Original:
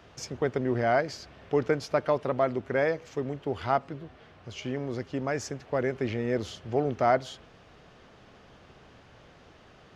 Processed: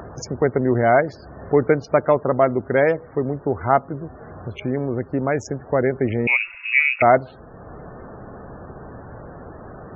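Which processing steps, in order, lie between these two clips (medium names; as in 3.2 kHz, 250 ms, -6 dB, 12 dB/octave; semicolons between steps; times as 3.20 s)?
local Wiener filter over 15 samples; in parallel at -3 dB: upward compressor, threshold -28 dBFS; 6.27–7.02 s: on the sum: frequency inversion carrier 2.7 kHz; loudest bins only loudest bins 64; trim +4.5 dB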